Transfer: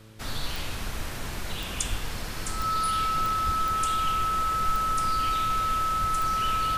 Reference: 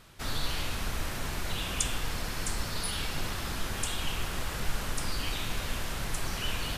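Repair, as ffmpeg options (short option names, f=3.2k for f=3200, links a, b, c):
-filter_complex "[0:a]adeclick=t=4,bandreject=f=109:t=h:w=4,bandreject=f=218:t=h:w=4,bandreject=f=327:t=h:w=4,bandreject=f=436:t=h:w=4,bandreject=f=545:t=h:w=4,bandreject=f=1.3k:w=30,asplit=3[a][b][c];[a]afade=t=out:st=1.89:d=0.02[d];[b]highpass=f=140:w=0.5412,highpass=f=140:w=1.3066,afade=t=in:st=1.89:d=0.02,afade=t=out:st=2.01:d=0.02[e];[c]afade=t=in:st=2.01:d=0.02[f];[d][e][f]amix=inputs=3:normalize=0,asplit=3[g][h][i];[g]afade=t=out:st=3.45:d=0.02[j];[h]highpass=f=140:w=0.5412,highpass=f=140:w=1.3066,afade=t=in:st=3.45:d=0.02,afade=t=out:st=3.57:d=0.02[k];[i]afade=t=in:st=3.57:d=0.02[l];[j][k][l]amix=inputs=3:normalize=0,asplit=3[m][n][o];[m]afade=t=out:st=6:d=0.02[p];[n]highpass=f=140:w=0.5412,highpass=f=140:w=1.3066,afade=t=in:st=6:d=0.02,afade=t=out:st=6.12:d=0.02[q];[o]afade=t=in:st=6.12:d=0.02[r];[p][q][r]amix=inputs=3:normalize=0"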